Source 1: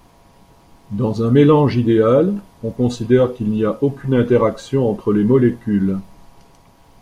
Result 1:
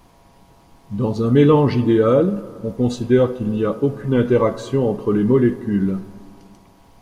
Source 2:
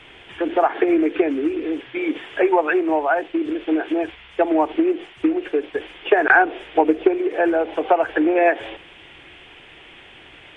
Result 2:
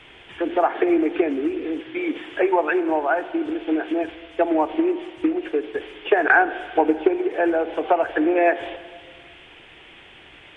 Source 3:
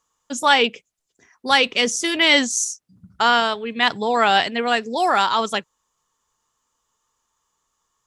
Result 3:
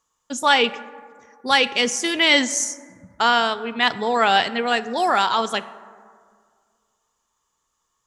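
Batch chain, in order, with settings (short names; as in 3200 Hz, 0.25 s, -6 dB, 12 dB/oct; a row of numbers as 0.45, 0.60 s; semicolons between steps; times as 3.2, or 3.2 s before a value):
plate-style reverb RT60 2 s, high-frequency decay 0.35×, DRR 14.5 dB; normalise peaks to -3 dBFS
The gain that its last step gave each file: -2.0, -2.0, -1.0 dB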